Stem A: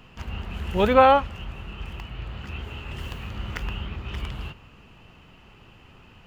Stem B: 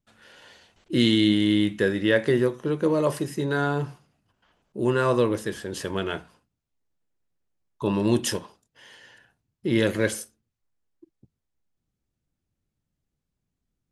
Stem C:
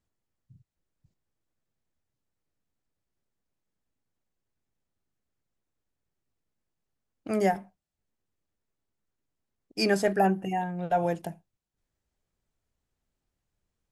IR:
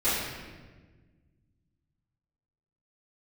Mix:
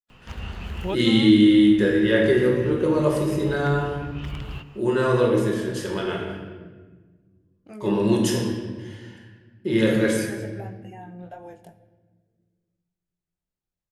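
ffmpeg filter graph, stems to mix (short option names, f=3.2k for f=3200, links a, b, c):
-filter_complex "[0:a]acompressor=threshold=-24dB:ratio=6,adelay=100,volume=-0.5dB[a];[1:a]agate=range=-34dB:threshold=-56dB:ratio=16:detection=peak,volume=-4.5dB,asplit=3[b][c][d];[c]volume=-8.5dB[e];[2:a]acompressor=threshold=-26dB:ratio=6,flanger=delay=19.5:depth=3.1:speed=1.9,adelay=400,volume=-7.5dB,asplit=2[f][g];[g]volume=-23.5dB[h];[d]apad=whole_len=280510[i];[a][i]sidechaincompress=threshold=-31dB:ratio=8:attack=11:release=952[j];[3:a]atrim=start_sample=2205[k];[e][h]amix=inputs=2:normalize=0[l];[l][k]afir=irnorm=-1:irlink=0[m];[j][b][f][m]amix=inputs=4:normalize=0"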